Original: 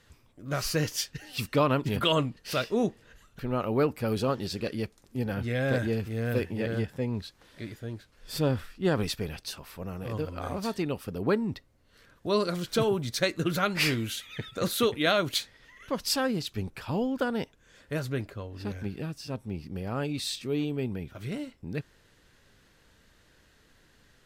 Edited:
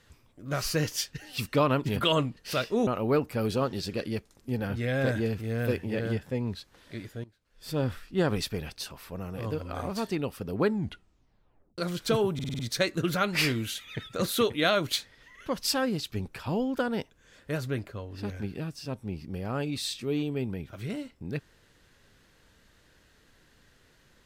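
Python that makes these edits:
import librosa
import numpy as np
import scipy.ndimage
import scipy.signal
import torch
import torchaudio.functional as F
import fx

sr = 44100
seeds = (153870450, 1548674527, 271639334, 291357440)

y = fx.edit(x, sr, fx.cut(start_s=2.87, length_s=0.67),
    fx.fade_in_from(start_s=7.91, length_s=0.66, curve='qua', floor_db=-18.0),
    fx.tape_stop(start_s=11.34, length_s=1.11),
    fx.stutter(start_s=13.01, slice_s=0.05, count=6), tone=tone)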